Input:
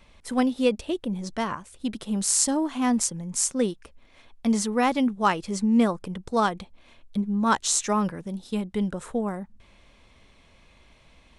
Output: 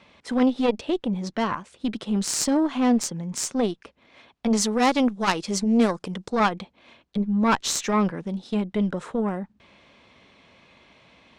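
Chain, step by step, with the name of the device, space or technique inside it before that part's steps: valve radio (BPF 140–4900 Hz; tube stage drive 17 dB, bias 0.6; core saturation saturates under 300 Hz); 4.57–6.3 tone controls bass -2 dB, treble +10 dB; gain +7.5 dB

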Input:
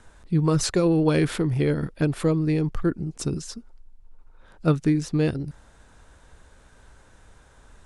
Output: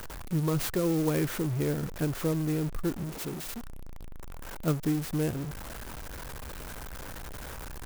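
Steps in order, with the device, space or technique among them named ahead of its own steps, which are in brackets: 3.04–3.45 HPF 160 Hz -> 660 Hz 6 dB/oct; early CD player with a faulty converter (zero-crossing step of -26 dBFS; clock jitter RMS 0.061 ms); gain -8.5 dB

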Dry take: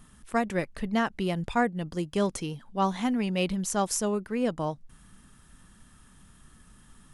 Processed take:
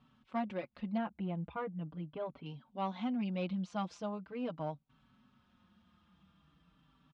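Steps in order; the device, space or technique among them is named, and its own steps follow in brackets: 0.97–2.46 air absorption 490 m; barber-pole flanger into a guitar amplifier (endless flanger 4.8 ms -0.41 Hz; soft clip -21 dBFS, distortion -19 dB; speaker cabinet 100–3800 Hz, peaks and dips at 110 Hz -7 dB, 400 Hz -9 dB, 1800 Hz -10 dB); gain -4.5 dB

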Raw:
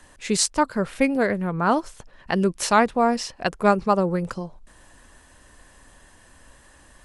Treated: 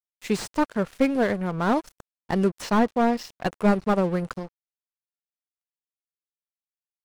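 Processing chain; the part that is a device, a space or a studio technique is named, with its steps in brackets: 2.62–3.28 LPF 5300 Hz; early transistor amplifier (crossover distortion -38 dBFS; slew limiter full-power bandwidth 110 Hz)

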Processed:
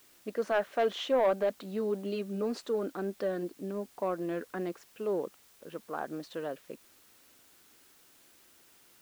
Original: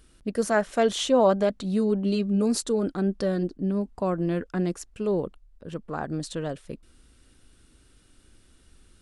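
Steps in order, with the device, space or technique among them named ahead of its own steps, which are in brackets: tape answering machine (BPF 350–2800 Hz; soft clip -16 dBFS, distortion -16 dB; wow and flutter 22 cents; white noise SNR 27 dB); gain -3 dB

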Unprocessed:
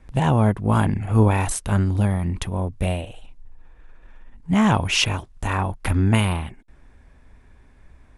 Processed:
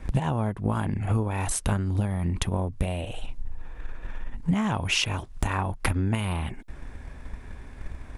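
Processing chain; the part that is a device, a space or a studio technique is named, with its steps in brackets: drum-bus smash (transient shaper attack +8 dB, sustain +1 dB; compressor 8:1, threshold -31 dBFS, peak gain reduction 23.5 dB; soft clip -17 dBFS, distortion -29 dB); gain +8.5 dB

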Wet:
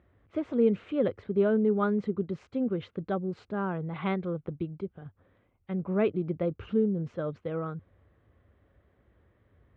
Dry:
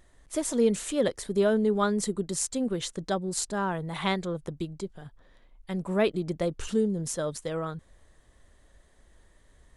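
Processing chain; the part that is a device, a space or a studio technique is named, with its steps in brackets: bass cabinet (speaker cabinet 64–2300 Hz, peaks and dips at 97 Hz +8 dB, 650 Hz -4 dB, 940 Hz -7 dB, 1800 Hz -9 dB)

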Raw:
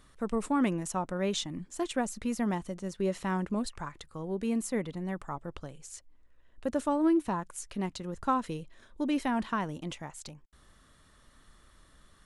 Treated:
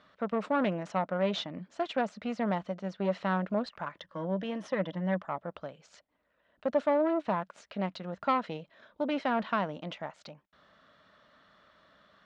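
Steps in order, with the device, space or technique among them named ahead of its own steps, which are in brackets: 3.97–5.22 ripple EQ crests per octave 1.2, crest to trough 12 dB; guitar amplifier (tube stage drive 25 dB, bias 0.55; tone controls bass -8 dB, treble -1 dB; speaker cabinet 110–4400 Hz, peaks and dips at 190 Hz +6 dB, 360 Hz -6 dB, 620 Hz +9 dB, 1400 Hz +4 dB); gain +3.5 dB

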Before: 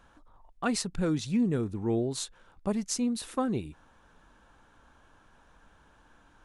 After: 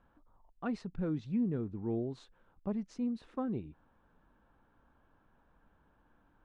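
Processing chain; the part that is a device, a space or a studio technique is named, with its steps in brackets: phone in a pocket (LPF 3800 Hz 12 dB/oct; bell 200 Hz +3 dB 1.6 oct; high shelf 2200 Hz -11.5 dB); gain -8 dB

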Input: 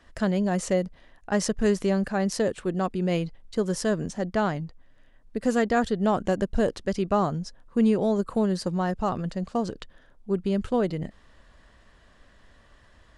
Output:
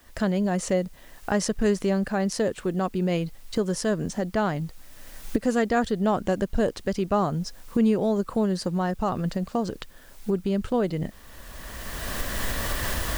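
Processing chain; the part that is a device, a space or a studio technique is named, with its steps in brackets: cheap recorder with automatic gain (white noise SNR 35 dB; recorder AGC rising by 20 dB/s)

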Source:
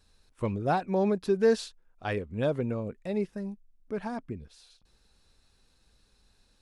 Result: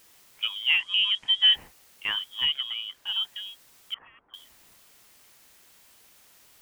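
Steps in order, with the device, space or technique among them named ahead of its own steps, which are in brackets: scrambled radio voice (BPF 360–2800 Hz; inverted band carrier 3500 Hz; white noise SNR 27 dB); 0.78–1.52 LPF 8500 Hz 24 dB/oct; 2.45–3.07 high shelf 5500 Hz -8 dB; 3.94–4.34 LPF 1300 Hz 24 dB/oct; gain +4.5 dB

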